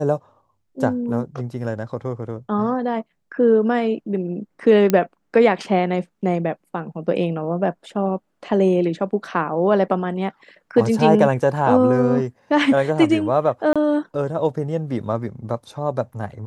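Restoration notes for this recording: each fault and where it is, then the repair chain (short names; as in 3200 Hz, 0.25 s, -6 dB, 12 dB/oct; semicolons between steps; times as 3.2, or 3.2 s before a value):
4.9 pop -5 dBFS
13.73–13.76 gap 26 ms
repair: de-click; interpolate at 13.73, 26 ms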